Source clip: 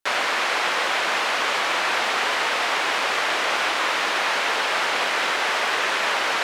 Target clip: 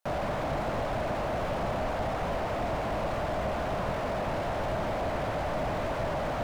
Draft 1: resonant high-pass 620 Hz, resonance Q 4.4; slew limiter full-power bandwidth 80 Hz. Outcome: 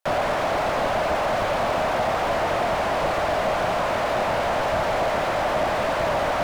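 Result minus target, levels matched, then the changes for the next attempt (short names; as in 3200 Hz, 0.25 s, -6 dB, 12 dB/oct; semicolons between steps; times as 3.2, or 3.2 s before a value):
slew limiter: distortion -11 dB
change: slew limiter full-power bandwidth 24 Hz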